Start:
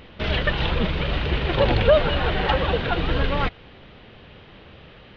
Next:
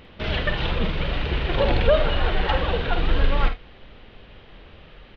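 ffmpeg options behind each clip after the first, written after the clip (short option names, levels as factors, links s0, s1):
-filter_complex "[0:a]asplit=2[s0][s1];[s1]aecho=0:1:51|78:0.376|0.133[s2];[s0][s2]amix=inputs=2:normalize=0,asubboost=boost=4.5:cutoff=51,volume=0.75"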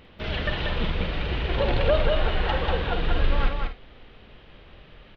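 -af "aecho=1:1:190:0.631,volume=0.631"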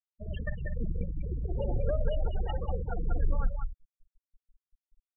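-filter_complex "[0:a]acrossover=split=230[s0][s1];[s1]acompressor=threshold=0.0178:ratio=1.5[s2];[s0][s2]amix=inputs=2:normalize=0,afftfilt=real='re*gte(hypot(re,im),0.0891)':imag='im*gte(hypot(re,im),0.0891)':win_size=1024:overlap=0.75,volume=0.562"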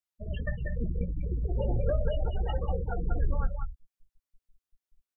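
-filter_complex "[0:a]asplit=2[s0][s1];[s1]adelay=17,volume=0.376[s2];[s0][s2]amix=inputs=2:normalize=0,volume=1.19"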